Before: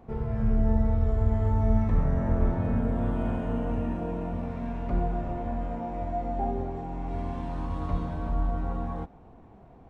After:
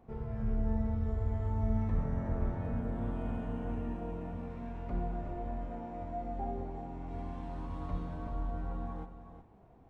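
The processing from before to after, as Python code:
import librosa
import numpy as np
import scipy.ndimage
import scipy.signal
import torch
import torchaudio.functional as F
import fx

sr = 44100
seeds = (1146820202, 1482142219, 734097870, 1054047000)

y = x + 10.0 ** (-10.0 / 20.0) * np.pad(x, (int(365 * sr / 1000.0), 0))[:len(x)]
y = F.gain(torch.from_numpy(y), -8.5).numpy()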